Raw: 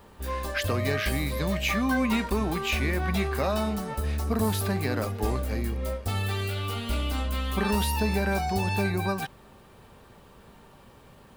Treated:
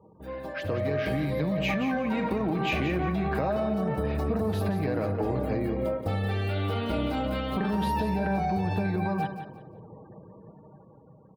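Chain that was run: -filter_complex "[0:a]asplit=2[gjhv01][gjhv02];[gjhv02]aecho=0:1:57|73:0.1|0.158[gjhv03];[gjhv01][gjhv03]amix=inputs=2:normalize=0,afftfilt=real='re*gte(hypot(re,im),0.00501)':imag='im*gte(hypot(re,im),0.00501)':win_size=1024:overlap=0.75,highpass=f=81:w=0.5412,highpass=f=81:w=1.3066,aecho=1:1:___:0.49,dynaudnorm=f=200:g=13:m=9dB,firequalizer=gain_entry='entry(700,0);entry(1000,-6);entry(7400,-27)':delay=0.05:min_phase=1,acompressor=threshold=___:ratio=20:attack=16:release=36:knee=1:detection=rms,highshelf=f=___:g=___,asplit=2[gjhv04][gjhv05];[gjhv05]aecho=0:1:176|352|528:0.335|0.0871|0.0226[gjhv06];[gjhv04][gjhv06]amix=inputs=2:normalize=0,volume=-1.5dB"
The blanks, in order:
6.3, -25dB, 4900, 7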